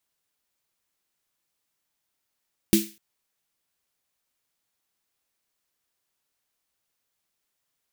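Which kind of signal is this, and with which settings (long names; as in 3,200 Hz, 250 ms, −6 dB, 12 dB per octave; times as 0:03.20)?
synth snare length 0.25 s, tones 210 Hz, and 330 Hz, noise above 2,100 Hz, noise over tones −7 dB, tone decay 0.26 s, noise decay 0.36 s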